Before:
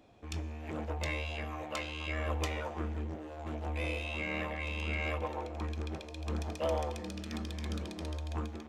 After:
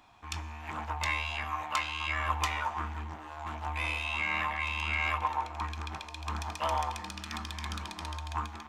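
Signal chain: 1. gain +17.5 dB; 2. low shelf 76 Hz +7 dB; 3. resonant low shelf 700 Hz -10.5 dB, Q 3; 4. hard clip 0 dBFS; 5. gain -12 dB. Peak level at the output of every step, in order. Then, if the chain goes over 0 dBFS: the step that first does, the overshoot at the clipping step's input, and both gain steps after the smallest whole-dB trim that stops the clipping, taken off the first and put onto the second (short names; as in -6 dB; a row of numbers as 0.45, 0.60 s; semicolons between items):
-3.5, -2.0, -3.5, -3.5, -15.5 dBFS; no overload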